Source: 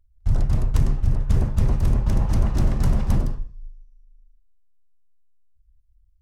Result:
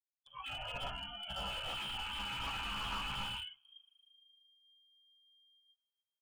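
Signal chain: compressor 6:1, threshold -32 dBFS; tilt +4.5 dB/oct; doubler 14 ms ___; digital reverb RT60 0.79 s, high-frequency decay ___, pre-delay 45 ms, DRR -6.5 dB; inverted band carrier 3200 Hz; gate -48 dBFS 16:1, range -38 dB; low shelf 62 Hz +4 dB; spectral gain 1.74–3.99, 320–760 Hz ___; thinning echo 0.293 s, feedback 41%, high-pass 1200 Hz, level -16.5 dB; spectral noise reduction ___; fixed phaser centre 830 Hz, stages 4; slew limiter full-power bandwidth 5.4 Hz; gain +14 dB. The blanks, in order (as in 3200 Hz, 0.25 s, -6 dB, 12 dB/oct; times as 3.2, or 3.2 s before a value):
-3.5 dB, 0.8×, -12 dB, 26 dB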